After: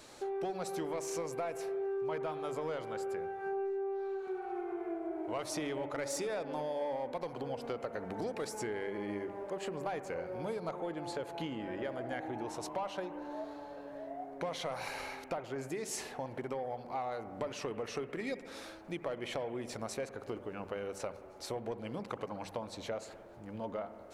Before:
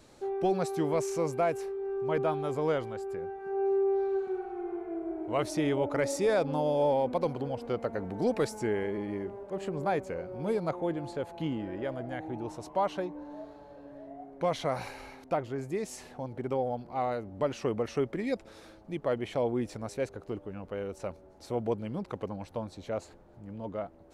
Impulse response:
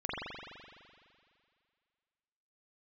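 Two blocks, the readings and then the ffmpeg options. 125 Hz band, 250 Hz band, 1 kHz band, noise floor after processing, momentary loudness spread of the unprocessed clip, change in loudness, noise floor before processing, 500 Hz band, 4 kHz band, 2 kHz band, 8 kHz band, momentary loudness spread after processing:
-10.0 dB, -7.5 dB, -5.5 dB, -51 dBFS, 12 LU, -7.0 dB, -54 dBFS, -7.0 dB, -0.5 dB, -2.5 dB, +0.5 dB, 6 LU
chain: -filter_complex "[0:a]asplit=2[s0][s1];[s1]highpass=f=720:p=1,volume=2.82,asoftclip=type=tanh:threshold=0.112[s2];[s0][s2]amix=inputs=2:normalize=0,lowpass=f=1600:p=1,volume=0.501,acompressor=threshold=0.0141:ratio=6,crystalizer=i=4:c=0,bandreject=f=48.62:t=h:w=4,bandreject=f=97.24:t=h:w=4,bandreject=f=145.86:t=h:w=4,bandreject=f=194.48:t=h:w=4,bandreject=f=243.1:t=h:w=4,asplit=2[s3][s4];[1:a]atrim=start_sample=2205,afade=t=out:st=0.31:d=0.01,atrim=end_sample=14112,asetrate=31752,aresample=44100[s5];[s4][s5]afir=irnorm=-1:irlink=0,volume=0.126[s6];[s3][s6]amix=inputs=2:normalize=0"

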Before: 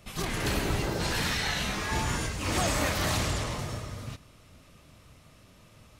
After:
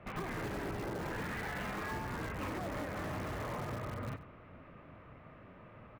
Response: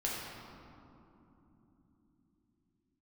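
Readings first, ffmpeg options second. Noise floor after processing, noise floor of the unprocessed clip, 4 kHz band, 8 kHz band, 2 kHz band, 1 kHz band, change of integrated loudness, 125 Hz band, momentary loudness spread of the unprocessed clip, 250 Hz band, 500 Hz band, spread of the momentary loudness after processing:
-56 dBFS, -56 dBFS, -19.5 dB, -21.0 dB, -9.5 dB, -7.5 dB, -10.5 dB, -9.5 dB, 11 LU, -7.0 dB, -6.5 dB, 16 LU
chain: -filter_complex "[0:a]lowpass=f=2000:w=0.5412,lowpass=f=2000:w=1.3066,lowshelf=f=110:g=-10.5,bandreject=f=74.87:t=h:w=4,bandreject=f=149.74:t=h:w=4,bandreject=f=224.61:t=h:w=4,bandreject=f=299.48:t=h:w=4,acrossover=split=530[s0][s1];[s1]alimiter=level_in=2:limit=0.0631:level=0:latency=1:release=144,volume=0.501[s2];[s0][s2]amix=inputs=2:normalize=0,acompressor=threshold=0.0112:ratio=12,asplit=2[s3][s4];[s4]aeval=exprs='(mod(84.1*val(0)+1,2)-1)/84.1':c=same,volume=0.316[s5];[s3][s5]amix=inputs=2:normalize=0,asplit=2[s6][s7];[s7]adelay=93.29,volume=0.158,highshelf=f=4000:g=-2.1[s8];[s6][s8]amix=inputs=2:normalize=0,volume=1.33"

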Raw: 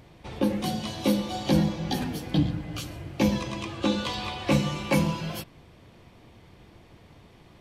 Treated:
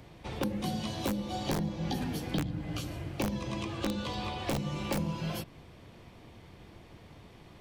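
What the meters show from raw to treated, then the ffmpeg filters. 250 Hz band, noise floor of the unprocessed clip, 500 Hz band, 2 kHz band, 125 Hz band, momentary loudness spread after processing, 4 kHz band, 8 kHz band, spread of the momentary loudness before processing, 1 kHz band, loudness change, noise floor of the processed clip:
-7.5 dB, -54 dBFS, -7.0 dB, -7.0 dB, -6.0 dB, 20 LU, -6.5 dB, -4.5 dB, 11 LU, -5.0 dB, -7.0 dB, -54 dBFS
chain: -filter_complex "[0:a]aeval=exprs='(mod(5.01*val(0)+1,2)-1)/5.01':c=same,acrossover=split=150|840[s0][s1][s2];[s0]acompressor=threshold=0.0158:ratio=4[s3];[s1]acompressor=threshold=0.02:ratio=4[s4];[s2]acompressor=threshold=0.01:ratio=4[s5];[s3][s4][s5]amix=inputs=3:normalize=0"

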